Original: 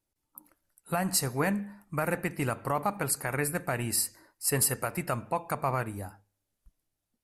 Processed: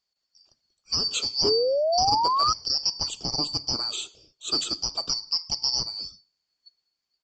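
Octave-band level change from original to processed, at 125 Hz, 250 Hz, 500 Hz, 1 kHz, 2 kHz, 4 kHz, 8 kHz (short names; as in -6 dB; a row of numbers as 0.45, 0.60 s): -9.0, -6.5, +5.0, +6.0, -11.5, +18.0, -1.0 dB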